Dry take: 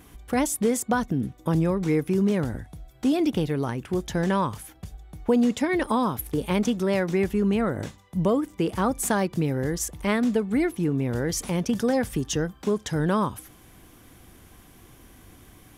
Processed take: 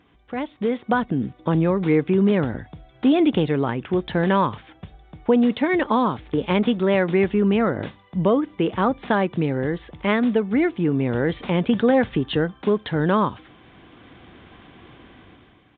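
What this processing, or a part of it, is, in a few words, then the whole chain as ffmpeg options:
Bluetooth headset: -af "highpass=f=160:p=1,dynaudnorm=f=150:g=9:m=4.47,aresample=8000,aresample=44100,volume=0.562" -ar 16000 -c:a sbc -b:a 64k

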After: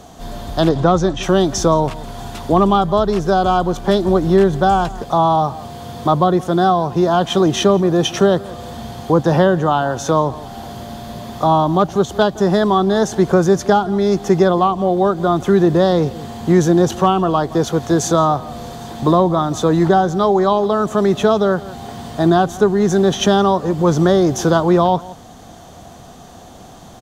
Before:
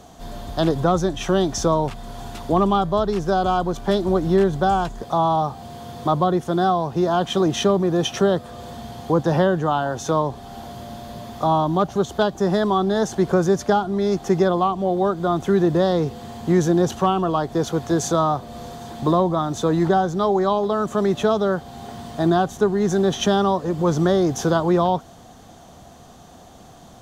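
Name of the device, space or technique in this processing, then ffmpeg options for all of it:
ducked delay: -filter_complex "[0:a]asettb=1/sr,asplit=3[s0][s1][s2];[s0]atrim=end=0.694[s3];[s1]atrim=start=0.69:end=1.23,asetpts=PTS-STARTPTS,afade=t=in:d=0.004:c=qsin,afade=t=out:st=0.536:d=0.004:c=qsin,lowpass=6600[s4];[s2]atrim=start=1.226[s5];[s3][s4]acrossfade=d=0.004:c1=hsin:c2=qsin[s6];[s6][s5]acrossfade=d=0.004:c1=qsin:c2=hsin,asplit=3[s7][s8][s9];[s8]adelay=169,volume=0.501[s10];[s9]apad=whole_len=1198642[s11];[s10][s11]sidechaincompress=threshold=0.0158:ratio=4:attack=16:release=358[s12];[s7][s12]amix=inputs=2:normalize=0,volume=1.78"

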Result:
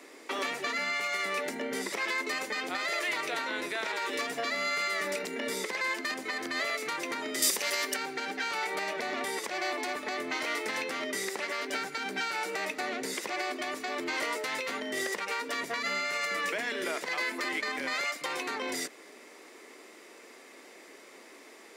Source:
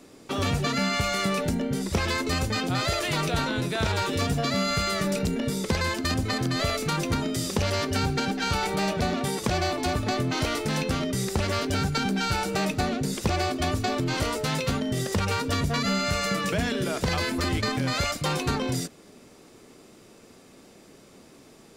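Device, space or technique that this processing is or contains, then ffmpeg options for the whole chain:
laptop speaker: -filter_complex "[0:a]highpass=f=310:w=0.5412,highpass=f=310:w=1.3066,equalizer=f=1000:t=o:w=0.32:g=4,equalizer=f=2000:t=o:w=0.53:g=11.5,alimiter=limit=0.0794:level=0:latency=1:release=406,asettb=1/sr,asplit=3[s0][s1][s2];[s0]atrim=end=7.424[s3];[s1]atrim=start=7.42:end=7.94,asetpts=PTS-STARTPTS,afade=t=in:d=0.004:c=qsin,afade=t=out:st=0.516:d=0.004:c=qsin,aemphasis=mode=production:type=75kf[s4];[s2]atrim=start=7.936[s5];[s3][s4]acrossfade=d=0.004:c1=hsin:c2=qsin[s6];[s6][s5]acrossfade=d=0.004:c1=qsin:c2=hsin"

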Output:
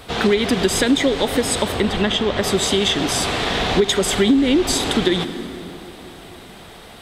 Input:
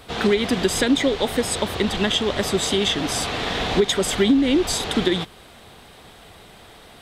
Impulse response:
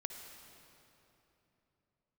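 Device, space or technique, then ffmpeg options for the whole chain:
ducked reverb: -filter_complex "[0:a]asettb=1/sr,asplit=3[s0][s1][s2];[s0]atrim=end=1.724[s3];[s1]atrim=start=1.72:end=2.44,asetpts=PTS-STARTPTS,afade=t=in:d=0.004:c=qsin,afade=t=out:st=0.716:d=0.004:c=qsin,highshelf=f=5400:g=-11[s4];[s2]atrim=start=2.436[s5];[s3][s4]acrossfade=d=0.004:c1=hsin:c2=qsin[s6];[s6][s5]acrossfade=d=0.004:c1=qsin:c2=hsin,asplit=3[s7][s8][s9];[1:a]atrim=start_sample=2205[s10];[s8][s10]afir=irnorm=-1:irlink=0[s11];[s9]apad=whole_len=309416[s12];[s11][s12]sidechaincompress=threshold=0.0708:ratio=8:attack=16:release=162,volume=1[s13];[s7][s13]amix=inputs=2:normalize=0"

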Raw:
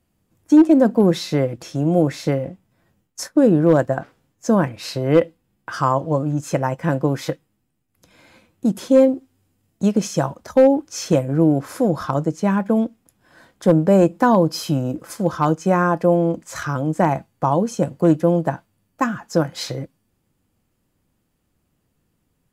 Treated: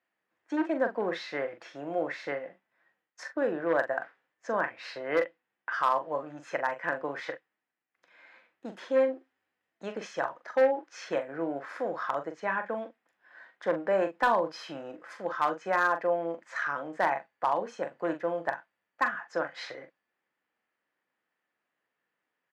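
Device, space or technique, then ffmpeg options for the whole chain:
megaphone: -filter_complex "[0:a]highpass=620,lowpass=2900,equalizer=f=1800:t=o:w=0.57:g=9.5,asoftclip=type=hard:threshold=0.335,asplit=2[s0][s1];[s1]adelay=42,volume=0.355[s2];[s0][s2]amix=inputs=2:normalize=0,volume=0.447"

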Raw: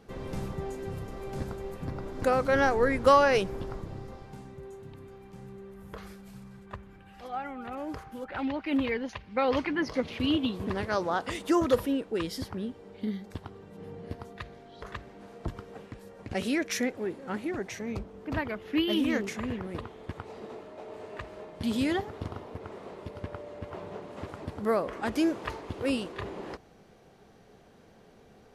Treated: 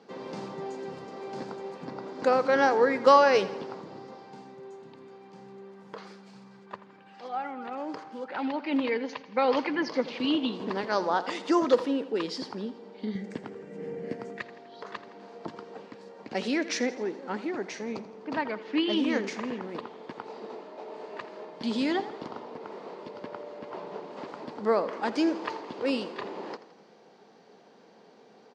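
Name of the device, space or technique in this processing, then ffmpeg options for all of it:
television speaker: -filter_complex "[0:a]highpass=f=190:w=0.5412,highpass=f=190:w=1.3066,equalizer=f=470:t=q:w=4:g=3,equalizer=f=910:t=q:w=4:g=6,equalizer=f=4600:t=q:w=4:g=6,lowpass=f=6700:w=0.5412,lowpass=f=6700:w=1.3066,asettb=1/sr,asplit=3[s0][s1][s2];[s0]atrim=end=13.154[s3];[s1]atrim=start=13.15:end=14.42,asetpts=PTS-STARTPTS,afade=t=in:d=0.004:c=qsin,afade=t=out:st=1.266:d=0.004:c=qsin,equalizer=f=125:t=o:w=1:g=9,equalizer=f=250:t=o:w=1:g=4,equalizer=f=500:t=o:w=1:g=6,equalizer=f=1000:t=o:w=1:g=-8,equalizer=f=2000:t=o:w=1:g=11,equalizer=f=4000:t=o:w=1:g=-9,equalizer=f=8000:t=o:w=1:g=10[s4];[s2]atrim=start=14.416[s5];[s3][s4]acrossfade=d=0.004:c1=hsin:c2=qsin[s6];[s6][s5]acrossfade=d=0.004:c1=qsin:c2=hsin,aecho=1:1:83|166|249|332|415:0.158|0.0872|0.0479|0.0264|0.0145"

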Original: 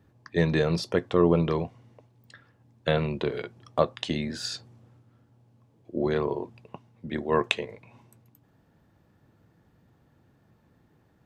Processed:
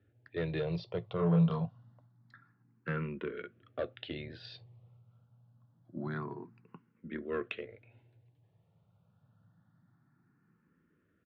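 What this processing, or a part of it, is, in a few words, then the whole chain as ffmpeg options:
barber-pole phaser into a guitar amplifier: -filter_complex "[0:a]asplit=2[s0][s1];[s1]afreqshift=0.26[s2];[s0][s2]amix=inputs=2:normalize=1,asoftclip=type=tanh:threshold=0.133,highpass=78,equalizer=f=110:t=q:w=4:g=9,equalizer=f=170:t=q:w=4:g=6,equalizer=f=870:t=q:w=4:g=-3,equalizer=f=1400:t=q:w=4:g=7,lowpass=f=4000:w=0.5412,lowpass=f=4000:w=1.3066,asplit=3[s3][s4][s5];[s3]afade=t=out:st=1.17:d=0.02[s6];[s4]asplit=2[s7][s8];[s8]adelay=30,volume=0.75[s9];[s7][s9]amix=inputs=2:normalize=0,afade=t=in:st=1.17:d=0.02,afade=t=out:st=1.64:d=0.02[s10];[s5]afade=t=in:st=1.64:d=0.02[s11];[s6][s10][s11]amix=inputs=3:normalize=0,volume=0.398"

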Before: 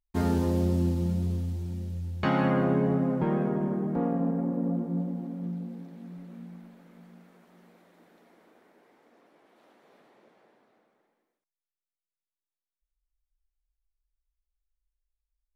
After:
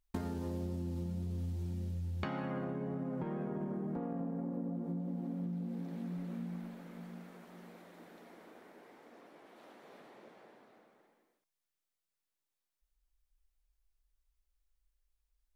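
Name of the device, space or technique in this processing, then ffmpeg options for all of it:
serial compression, leveller first: -af "acompressor=threshold=0.0398:ratio=6,acompressor=threshold=0.01:ratio=6,volume=1.58"

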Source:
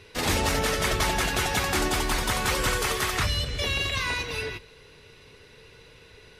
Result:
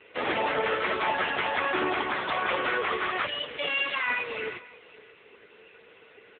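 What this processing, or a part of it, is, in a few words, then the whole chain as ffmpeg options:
satellite phone: -af "highpass=350,lowpass=3200,aecho=1:1:538:0.0891,volume=1.68" -ar 8000 -c:a libopencore_amrnb -b:a 6700

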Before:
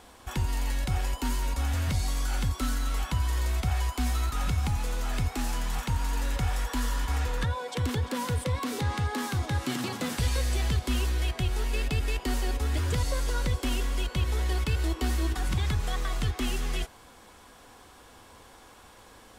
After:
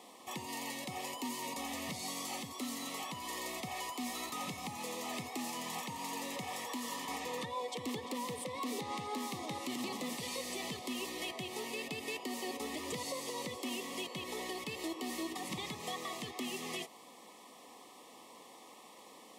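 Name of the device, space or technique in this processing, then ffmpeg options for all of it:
PA system with an anti-feedback notch: -af "highpass=f=190:w=0.5412,highpass=f=190:w=1.3066,asuperstop=centerf=1500:order=12:qfactor=3.1,alimiter=level_in=1.5:limit=0.0631:level=0:latency=1:release=181,volume=0.668,volume=0.794"

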